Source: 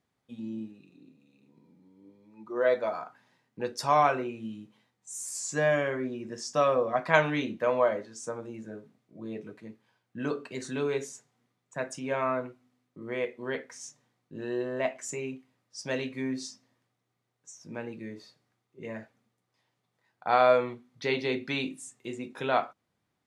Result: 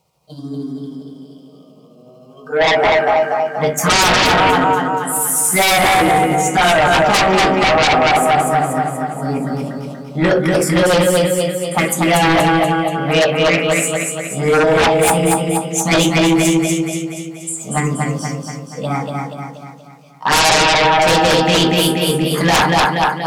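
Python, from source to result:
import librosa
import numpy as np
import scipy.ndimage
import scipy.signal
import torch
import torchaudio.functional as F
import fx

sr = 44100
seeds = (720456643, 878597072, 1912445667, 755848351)

p1 = fx.pitch_heads(x, sr, semitones=4.0)
p2 = fx.rev_fdn(p1, sr, rt60_s=0.48, lf_ratio=1.55, hf_ratio=0.5, size_ms=38.0, drr_db=4.0)
p3 = fx.env_phaser(p2, sr, low_hz=280.0, high_hz=4300.0, full_db=-22.0)
p4 = p3 + fx.echo_feedback(p3, sr, ms=239, feedback_pct=53, wet_db=-3.5, dry=0)
p5 = fx.rider(p4, sr, range_db=4, speed_s=2.0)
p6 = fx.fold_sine(p5, sr, drive_db=20, ceiling_db=-6.5)
p7 = p5 + F.gain(torch.from_numpy(p6), -4.5).numpy()
y = F.gain(torch.from_numpy(p7), 1.0).numpy()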